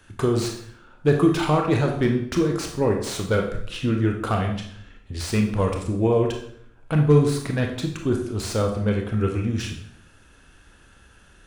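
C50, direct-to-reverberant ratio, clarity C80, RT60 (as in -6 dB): 6.0 dB, 2.0 dB, 9.5 dB, 0.65 s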